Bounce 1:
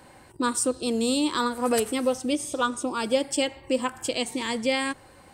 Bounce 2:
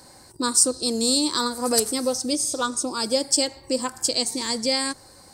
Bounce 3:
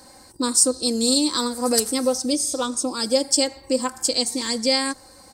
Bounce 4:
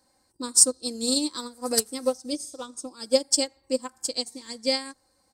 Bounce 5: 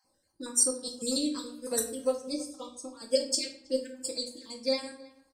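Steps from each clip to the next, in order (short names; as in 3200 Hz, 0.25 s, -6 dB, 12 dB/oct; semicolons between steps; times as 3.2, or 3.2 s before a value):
resonant high shelf 3700 Hz +8 dB, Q 3
comb 3.8 ms, depth 47%
upward expander 2.5:1, over -28 dBFS; gain +2 dB
random spectral dropouts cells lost 37%; speakerphone echo 0.32 s, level -21 dB; reverb RT60 0.60 s, pre-delay 6 ms, DRR 2 dB; gain -6 dB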